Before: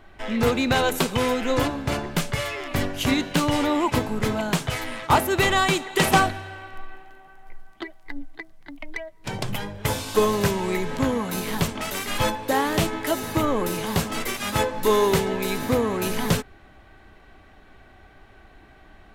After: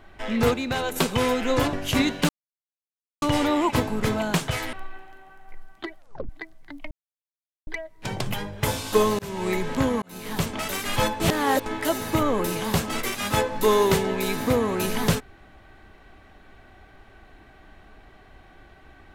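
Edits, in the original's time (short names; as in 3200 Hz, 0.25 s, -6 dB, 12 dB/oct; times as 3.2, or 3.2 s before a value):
0.54–0.96 gain -6 dB
1.73–2.85 cut
3.41 insert silence 0.93 s
4.92–6.71 cut
7.96 tape stop 0.31 s
8.89 insert silence 0.76 s
10.41–10.7 fade in
11.24–11.73 fade in
12.42–12.88 reverse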